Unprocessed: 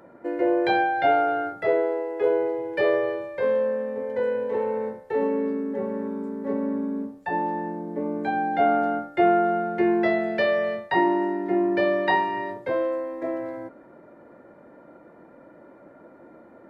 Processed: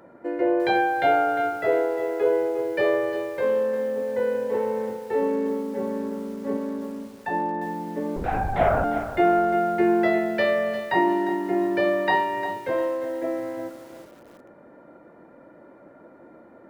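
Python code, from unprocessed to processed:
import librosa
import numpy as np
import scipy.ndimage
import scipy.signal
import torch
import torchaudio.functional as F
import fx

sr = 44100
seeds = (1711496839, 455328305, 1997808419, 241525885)

y = fx.peak_eq(x, sr, hz=120.0, db=-6.0, octaves=2.7, at=(6.57, 7.13))
y = fx.lpc_vocoder(y, sr, seeds[0], excitation='whisper', order=8, at=(8.16, 8.84))
y = fx.echo_crushed(y, sr, ms=352, feedback_pct=35, bits=7, wet_db=-11.0)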